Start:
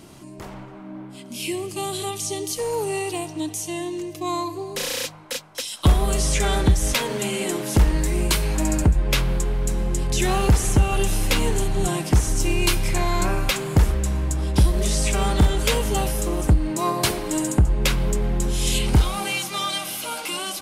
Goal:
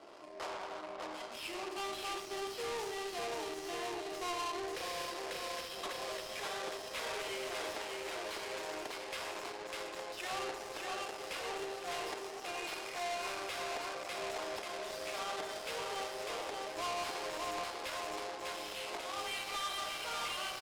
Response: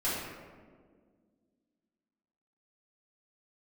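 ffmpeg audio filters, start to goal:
-filter_complex "[0:a]asplit=2[link_01][link_02];[link_02]lowpass=frequency=5200:width_type=q:width=4.9[link_03];[1:a]atrim=start_sample=2205,afade=type=out:start_time=0.32:duration=0.01,atrim=end_sample=14553[link_04];[link_03][link_04]afir=irnorm=-1:irlink=0,volume=-11dB[link_05];[link_01][link_05]amix=inputs=2:normalize=0,acompressor=threshold=-30dB:ratio=4,highpass=frequency=460:width=0.5412,highpass=frequency=460:width=1.3066,aecho=1:1:600|1140|1626|2063|2457:0.631|0.398|0.251|0.158|0.1,volume=35dB,asoftclip=hard,volume=-35dB,adynamicsmooth=sensitivity=6:basefreq=580,crystalizer=i=6:c=0,volume=-1.5dB"

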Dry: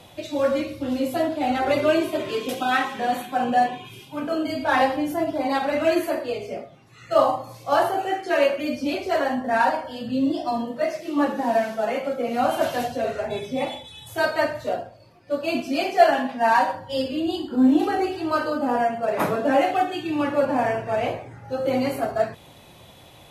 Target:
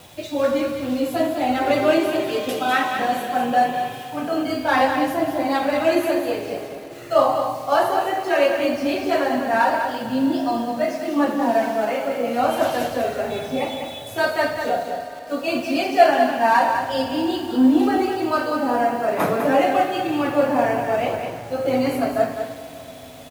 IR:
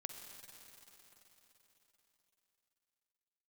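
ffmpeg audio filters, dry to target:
-filter_complex "[0:a]asettb=1/sr,asplit=3[link_01][link_02][link_03];[link_01]atrim=end=14.574[link_04];[link_02]atrim=start=14.57:end=15.48,asetpts=PTS-STARTPTS,afade=type=in:duration=0.004:curve=qsin,afade=type=out:start_time=0.906:duration=0.004:curve=qsin,aecho=1:1:4.2:0.74,atrim=end_sample=40131[link_05];[link_03]atrim=start=15.476[link_06];[link_04][link_05]acrossfade=duration=0.004:curve1=hsin:curve2=qsin[link_07];[link_07][link_06]acrossfade=duration=0.004:curve1=qsin:curve2=hsin,acrusher=bits=7:mix=0:aa=0.000001,aecho=1:1:201:0.447,asplit=2[link_08][link_09];[1:a]atrim=start_sample=2205[link_10];[link_09][link_10]afir=irnorm=-1:irlink=0,volume=3.5dB[link_11];[link_08][link_11]amix=inputs=2:normalize=0,volume=-4dB"

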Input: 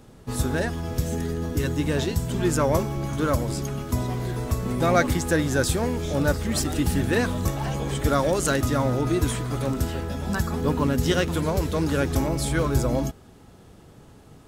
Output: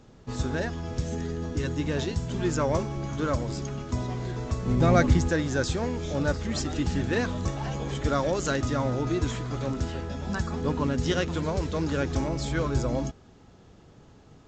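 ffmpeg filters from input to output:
ffmpeg -i in.wav -filter_complex "[0:a]asettb=1/sr,asplit=3[link_01][link_02][link_03];[link_01]atrim=end=4.674[link_04];[link_02]atrim=start=4.67:end=5.29,asetpts=PTS-STARTPTS,afade=type=in:duration=0.004:curve=qsin,afade=type=out:start_time=0.616:duration=0.004:curve=qsin,lowshelf=frequency=260:gain=10.5[link_05];[link_03]atrim=start=5.286[link_06];[link_04][link_05]acrossfade=duration=0.004:curve1=hsin:curve2=qsin[link_07];[link_07][link_06]acrossfade=duration=0.004:curve1=qsin:curve2=hsin,volume=-4dB" -ar 16000 -c:a pcm_mulaw out.wav

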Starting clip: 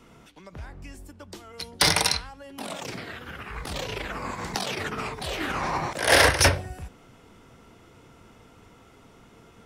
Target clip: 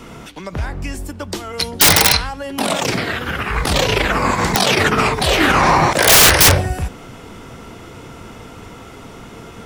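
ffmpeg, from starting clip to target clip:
ffmpeg -i in.wav -af "aeval=exprs='(mod(5.62*val(0)+1,2)-1)/5.62':channel_layout=same,alimiter=level_in=18.5dB:limit=-1dB:release=50:level=0:latency=1,volume=-2dB" out.wav

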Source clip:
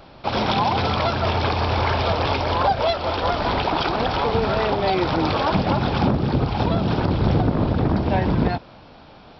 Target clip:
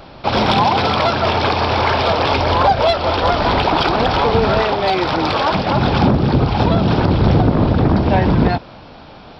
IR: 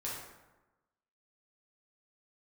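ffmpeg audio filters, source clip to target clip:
-filter_complex "[0:a]asettb=1/sr,asplit=3[link_01][link_02][link_03];[link_01]atrim=end=0.674[link_04];[link_02]atrim=start=0.67:end=2.34,asetpts=PTS-STARTPTS,afade=type=in:duration=0.004:curve=qsin,afade=type=out:start_time=1.666:duration=0.004:curve=qsin,lowshelf=frequency=97:gain=-11.5[link_05];[link_03]atrim=start=2.336[link_06];[link_04][link_05]acrossfade=duration=0.004:curve1=hsin:curve2=qsin[link_07];[link_07][link_06]acrossfade=duration=0.004:curve1=qsin:curve2=hsin,acontrast=77,asettb=1/sr,asplit=3[link_08][link_09][link_10];[link_08]atrim=end=4.624[link_11];[link_09]atrim=start=4.62:end=5.75,asetpts=PTS-STARTPTS,afade=type=in:duration=0.004:curve=qsin,afade=type=out:start_time=1.126:duration=0.004:curve=qsin,lowshelf=frequency=410:gain=-7[link_12];[link_10]atrim=start=5.746[link_13];[link_11][link_12]acrossfade=duration=0.004:curve1=hsin:curve2=qsin[link_14];[link_14][link_13]acrossfade=duration=0.004:curve1=qsin:curve2=hsin"

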